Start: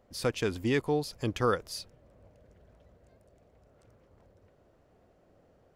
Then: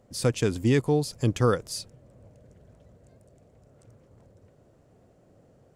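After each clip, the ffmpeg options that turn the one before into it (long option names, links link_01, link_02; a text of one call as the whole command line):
ffmpeg -i in.wav -af "equalizer=frequency=125:width_type=o:width=1:gain=10,equalizer=frequency=250:width_type=o:width=1:gain=4,equalizer=frequency=500:width_type=o:width=1:gain=3,equalizer=frequency=8000:width_type=o:width=1:gain=10" out.wav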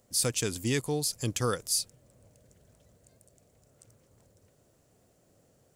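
ffmpeg -i in.wav -af "crystalizer=i=5.5:c=0,volume=-8dB" out.wav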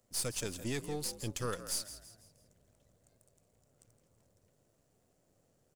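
ffmpeg -i in.wav -filter_complex "[0:a]aeval=exprs='if(lt(val(0),0),0.447*val(0),val(0))':channel_layout=same,asplit=5[link_01][link_02][link_03][link_04][link_05];[link_02]adelay=165,afreqshift=54,volume=-13dB[link_06];[link_03]adelay=330,afreqshift=108,volume=-20.7dB[link_07];[link_04]adelay=495,afreqshift=162,volume=-28.5dB[link_08];[link_05]adelay=660,afreqshift=216,volume=-36.2dB[link_09];[link_01][link_06][link_07][link_08][link_09]amix=inputs=5:normalize=0,volume=-5.5dB" out.wav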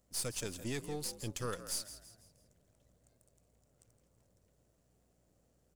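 ffmpeg -i in.wav -af "aeval=exprs='val(0)+0.0002*(sin(2*PI*60*n/s)+sin(2*PI*2*60*n/s)/2+sin(2*PI*3*60*n/s)/3+sin(2*PI*4*60*n/s)/4+sin(2*PI*5*60*n/s)/5)':channel_layout=same,volume=-2dB" out.wav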